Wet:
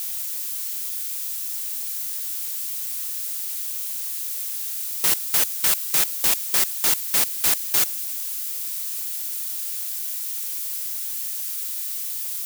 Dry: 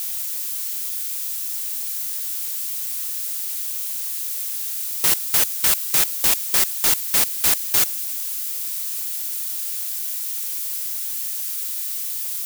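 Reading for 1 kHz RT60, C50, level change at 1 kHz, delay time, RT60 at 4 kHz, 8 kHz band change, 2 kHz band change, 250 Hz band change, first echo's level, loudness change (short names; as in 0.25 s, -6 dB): none, none, -2.0 dB, none, none, -2.0 dB, -2.0 dB, -2.5 dB, none, -2.0 dB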